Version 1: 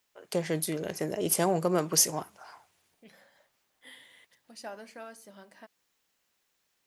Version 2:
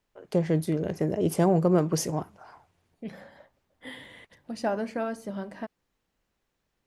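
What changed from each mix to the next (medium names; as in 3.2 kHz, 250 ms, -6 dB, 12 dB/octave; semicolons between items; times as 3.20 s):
second voice +11.5 dB; master: add tilt EQ -3.5 dB/octave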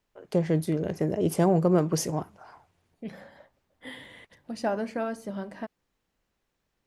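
no change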